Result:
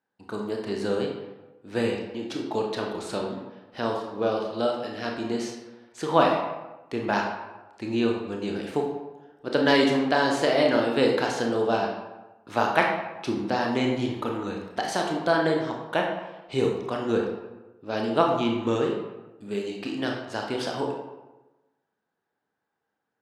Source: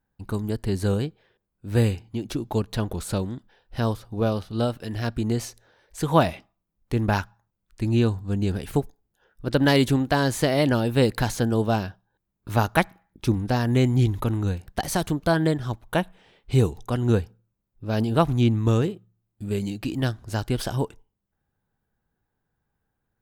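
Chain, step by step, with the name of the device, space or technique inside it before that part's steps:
supermarket ceiling speaker (band-pass filter 310–5,800 Hz; convolution reverb RT60 1.1 s, pre-delay 24 ms, DRR 0 dB)
level −1 dB

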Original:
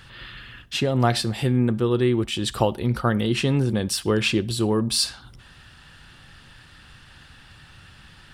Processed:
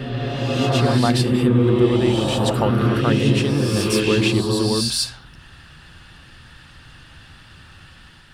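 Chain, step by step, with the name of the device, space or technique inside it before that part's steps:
reverse reverb (reversed playback; convolution reverb RT60 2.9 s, pre-delay 104 ms, DRR −1 dB; reversed playback)

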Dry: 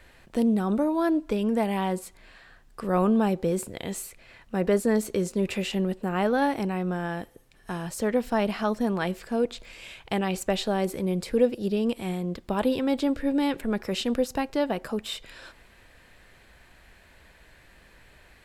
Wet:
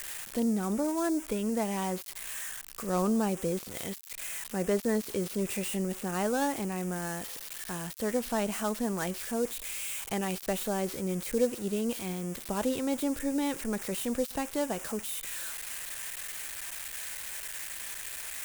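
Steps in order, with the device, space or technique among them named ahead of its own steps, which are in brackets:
budget class-D amplifier (gap after every zero crossing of 0.12 ms; spike at every zero crossing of −18 dBFS)
level −5.5 dB

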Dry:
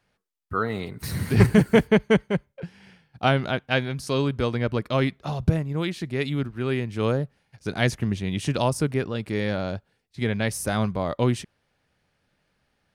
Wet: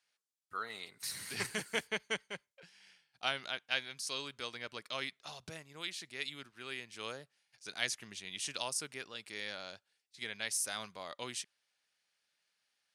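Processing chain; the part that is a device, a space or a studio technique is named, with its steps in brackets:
piezo pickup straight into a mixer (low-pass filter 7,700 Hz 12 dB per octave; first difference)
level +2 dB

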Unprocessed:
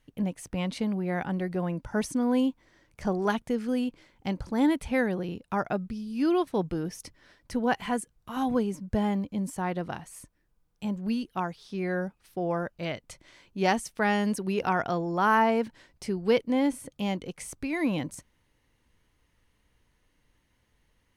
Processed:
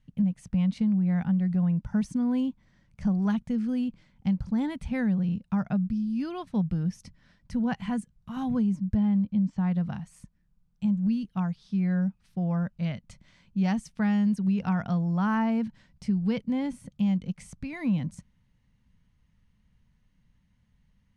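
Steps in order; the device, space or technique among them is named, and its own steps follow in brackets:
0:08.95–0:09.67: low-pass filter 5,200 Hz 24 dB per octave
jukebox (low-pass filter 7,700 Hz 12 dB per octave; low shelf with overshoot 260 Hz +9.5 dB, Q 3; downward compressor 4 to 1, threshold −16 dBFS, peak gain reduction 6 dB)
level −6 dB

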